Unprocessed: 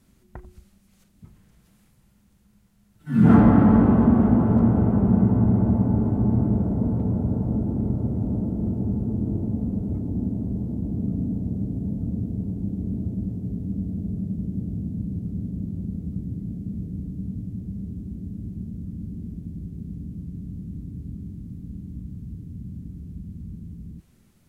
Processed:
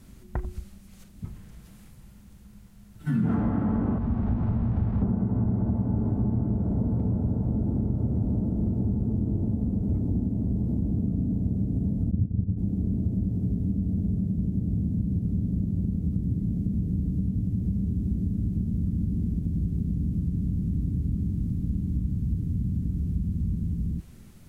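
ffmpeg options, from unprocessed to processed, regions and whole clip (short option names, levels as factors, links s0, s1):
-filter_complex "[0:a]asettb=1/sr,asplit=3[s0][s1][s2];[s0]atrim=end=3.984[s3];[s1]atrim=start=3.98:end=5.02,asetpts=PTS-STARTPTS,afade=t=in:d=0.004:c=qsin,afade=t=out:st=1.036:d=0.004:c=qsin,aeval=exprs='val(0)+0.5*0.0531*sgn(val(0))':c=same,lowpass=1100,equalizer=f=390:w=0.44:g=-13.5[s4];[s2]atrim=start=5.016[s5];[s3][s4]acrossfade=d=0.004:c1=hsin:c2=qsin[s6];[s6][s5]acrossfade=d=0.004:c1=qsin:c2=hsin,asettb=1/sr,asplit=3[s7][s8][s9];[s7]atrim=end=12.114[s10];[s8]atrim=start=12.11:end=12.58,asetpts=PTS-STARTPTS,afade=t=in:d=0.004:c=qsin,afade=t=out:st=0.466:d=0.004:c=qsin,highpass=f=71:w=0.5412,highpass=f=71:w=1.3066,aemphasis=mode=reproduction:type=riaa,agate=range=0.0224:threshold=0.251:ratio=3:release=100:detection=peak[s11];[s9]atrim=start=12.576[s12];[s10][s11]acrossfade=d=0.004:c1=hsin:c2=qsin[s13];[s13][s12]acrossfade=d=0.004:c1=qsin:c2=hsin,acompressor=threshold=0.0224:ratio=6,lowshelf=f=110:g=7,volume=2.24"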